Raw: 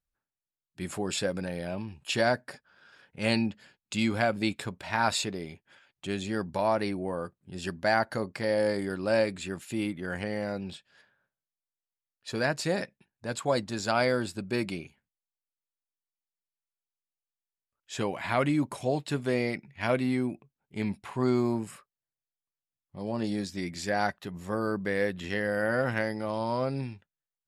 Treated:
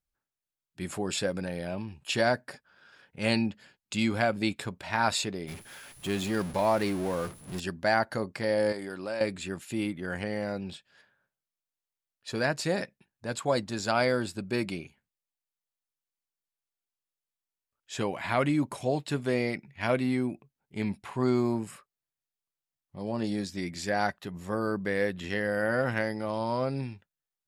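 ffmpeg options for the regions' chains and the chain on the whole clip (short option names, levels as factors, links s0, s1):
-filter_complex "[0:a]asettb=1/sr,asplit=3[s0][s1][s2];[s0]atrim=end=5.474[s3];[s1]atrim=start=5.47:end=7.6,asetpts=PTS-STARTPTS,afade=t=in:d=0.004:c=qsin,afade=t=out:st=2.126:d=0.004:c=qsin,aeval=exprs='val(0)+0.5*0.0178*sgn(val(0))':c=same,agate=range=0.0224:threshold=0.0158:ratio=3:release=100:detection=peak,aeval=exprs='val(0)+0.002*sin(2*PI*10000*n/s)':c=same[s4];[s2]atrim=start=7.596[s5];[s3][s4]acrossfade=d=0.004:c1=hsin:c2=qsin[s6];[s6][s5]acrossfade=d=0.004:c1=qsin:c2=hsin,asettb=1/sr,asplit=3[s7][s8][s9];[s7]atrim=end=8.724[s10];[s8]atrim=start=8.72:end=9.21,asetpts=PTS-STARTPTS,afade=t=in:d=0.004:c=qsin,afade=t=out:st=0.486:d=0.004:c=qsin,highpass=54,acompressor=threshold=0.0355:ratio=4:attack=3.2:release=140:knee=1:detection=peak,lowshelf=f=220:g=-10[s11];[s9]atrim=start=9.206[s12];[s10][s11]acrossfade=d=0.004:c1=hsin:c2=qsin[s13];[s13][s12]acrossfade=d=0.004:c1=qsin:c2=hsin"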